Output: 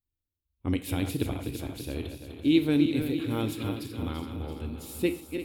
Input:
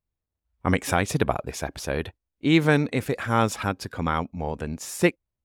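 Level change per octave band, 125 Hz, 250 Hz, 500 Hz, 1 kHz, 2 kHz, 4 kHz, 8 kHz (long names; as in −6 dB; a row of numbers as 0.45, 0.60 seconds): −5.5, −1.0, −7.0, −15.5, −12.5, −4.0, −9.5 decibels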